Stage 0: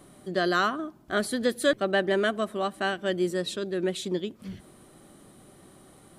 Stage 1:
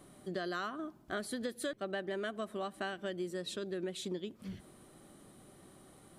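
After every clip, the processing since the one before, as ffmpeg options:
-af "acompressor=threshold=-30dB:ratio=6,volume=-5dB"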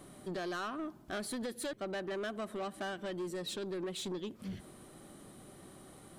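-af "asoftclip=type=tanh:threshold=-38dB,volume=4dB"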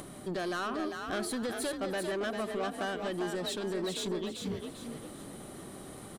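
-filter_complex "[0:a]acompressor=mode=upward:threshold=-45dB:ratio=2.5,asplit=2[a][b];[b]asplit=4[c][d][e][f];[c]adelay=397,afreqshift=43,volume=-5.5dB[g];[d]adelay=794,afreqshift=86,volume=-14.9dB[h];[e]adelay=1191,afreqshift=129,volume=-24.2dB[i];[f]adelay=1588,afreqshift=172,volume=-33.6dB[j];[g][h][i][j]amix=inputs=4:normalize=0[k];[a][k]amix=inputs=2:normalize=0,volume=4dB"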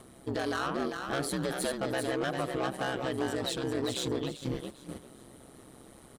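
-af "aeval=exprs='val(0)*sin(2*PI*66*n/s)':c=same,agate=range=-9dB:threshold=-42dB:ratio=16:detection=peak,volume=5dB"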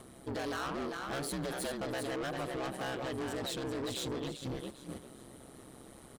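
-af "asoftclip=type=tanh:threshold=-33dB"

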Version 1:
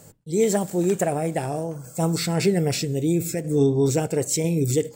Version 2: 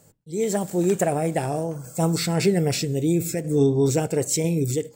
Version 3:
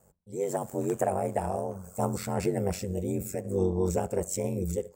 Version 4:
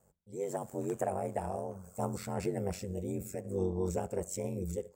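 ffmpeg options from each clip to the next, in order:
-af "dynaudnorm=f=150:g=7:m=11.5dB,volume=-7.5dB"
-af "equalizer=f=125:t=o:w=1:g=4,equalizer=f=250:t=o:w=1:g=-10,equalizer=f=500:t=o:w=1:g=4,equalizer=f=1k:t=o:w=1:g=6,equalizer=f=2k:t=o:w=1:g=-3,equalizer=f=4k:t=o:w=1:g=-11,aeval=exprs='val(0)*sin(2*PI*47*n/s)':c=same,volume=-4.5dB"
-af "highshelf=f=11k:g=-3.5,volume=-6dB"

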